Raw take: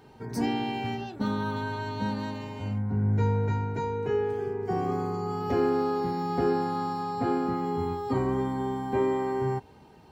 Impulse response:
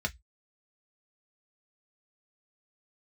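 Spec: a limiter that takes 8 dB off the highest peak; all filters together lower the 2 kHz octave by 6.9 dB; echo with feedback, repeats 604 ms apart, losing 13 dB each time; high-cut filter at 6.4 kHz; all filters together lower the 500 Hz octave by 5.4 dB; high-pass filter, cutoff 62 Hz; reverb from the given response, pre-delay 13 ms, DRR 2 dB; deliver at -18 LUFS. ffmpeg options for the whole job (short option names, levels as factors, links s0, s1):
-filter_complex "[0:a]highpass=62,lowpass=6400,equalizer=f=500:t=o:g=-7,equalizer=f=2000:t=o:g=-9,alimiter=level_in=1.12:limit=0.0631:level=0:latency=1,volume=0.891,aecho=1:1:604|1208|1812:0.224|0.0493|0.0108,asplit=2[s0][s1];[1:a]atrim=start_sample=2205,adelay=13[s2];[s1][s2]afir=irnorm=-1:irlink=0,volume=0.422[s3];[s0][s3]amix=inputs=2:normalize=0,volume=3.98"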